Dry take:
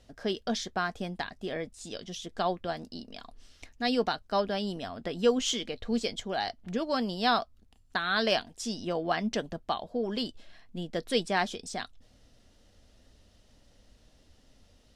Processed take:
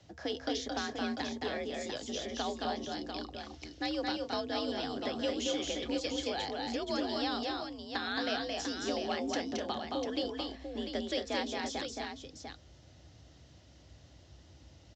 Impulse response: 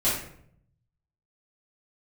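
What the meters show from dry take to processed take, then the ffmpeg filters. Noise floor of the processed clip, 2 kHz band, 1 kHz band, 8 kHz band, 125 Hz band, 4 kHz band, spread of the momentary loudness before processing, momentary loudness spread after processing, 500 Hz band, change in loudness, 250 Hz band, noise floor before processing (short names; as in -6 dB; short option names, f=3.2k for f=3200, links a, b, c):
-58 dBFS, -5.0 dB, -5.5 dB, -3.0 dB, -8.5 dB, -2.5 dB, 12 LU, 7 LU, -4.5 dB, -4.5 dB, -2.5 dB, -62 dBFS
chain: -filter_complex "[0:a]bandreject=f=207.9:t=h:w=4,bandreject=f=415.8:t=h:w=4,bandreject=f=623.7:t=h:w=4,bandreject=f=831.6:t=h:w=4,bandreject=f=1.0395k:t=h:w=4,acrossover=split=93|490|2200[a][b][c][d];[a]acompressor=threshold=-55dB:ratio=4[e];[b]acompressor=threshold=-37dB:ratio=4[f];[c]acompressor=threshold=-42dB:ratio=4[g];[d]acompressor=threshold=-39dB:ratio=4[h];[e][f][g][h]amix=inputs=4:normalize=0,afreqshift=55,asplit=2[i][j];[j]aecho=0:1:221|251|696:0.708|0.316|0.447[k];[i][k]amix=inputs=2:normalize=0" -ar 16000 -c:a pcm_mulaw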